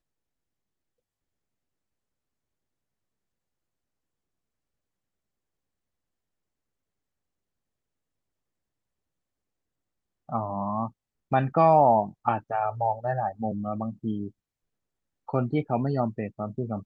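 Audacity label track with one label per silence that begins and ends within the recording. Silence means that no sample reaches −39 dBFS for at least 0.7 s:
14.280000	15.280000	silence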